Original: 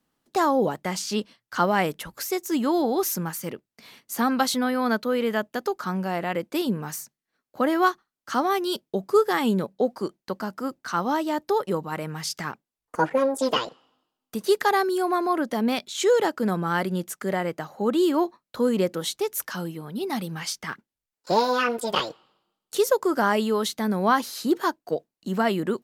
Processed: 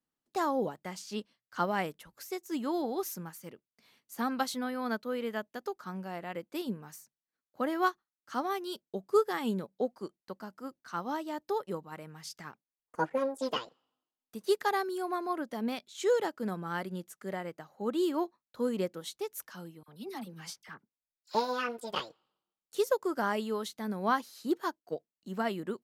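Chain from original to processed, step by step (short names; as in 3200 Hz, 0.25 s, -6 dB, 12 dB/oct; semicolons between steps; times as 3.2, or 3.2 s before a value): 19.83–21.35 dispersion lows, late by 52 ms, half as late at 1400 Hz; upward expander 1.5:1, over -35 dBFS; gain -6 dB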